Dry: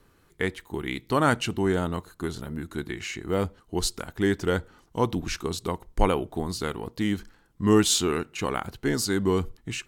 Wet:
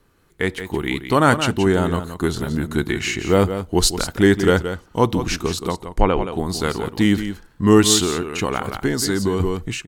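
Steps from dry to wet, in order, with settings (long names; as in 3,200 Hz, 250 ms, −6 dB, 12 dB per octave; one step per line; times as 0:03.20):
automatic gain control gain up to 11.5 dB
single-tap delay 173 ms −10 dB
0:05.72–0:06.38: treble cut that deepens with the level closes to 2,800 Hz, closed at −10.5 dBFS
0:08.02–0:09.40: downward compressor 6 to 1, threshold −17 dBFS, peak gain reduction 9 dB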